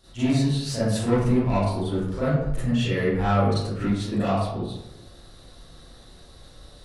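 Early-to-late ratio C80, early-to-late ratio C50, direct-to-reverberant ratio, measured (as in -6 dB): 2.0 dB, -3.0 dB, -12.5 dB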